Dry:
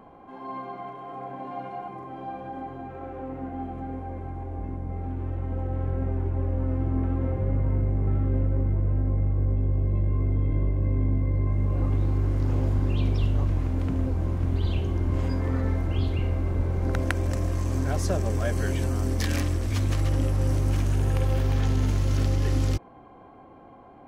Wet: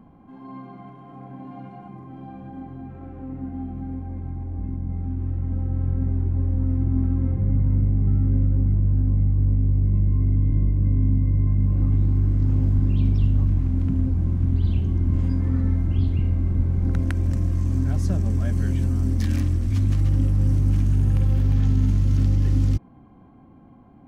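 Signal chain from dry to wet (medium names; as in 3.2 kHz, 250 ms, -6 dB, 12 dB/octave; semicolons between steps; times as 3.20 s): resonant low shelf 320 Hz +11 dB, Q 1.5; trim -7 dB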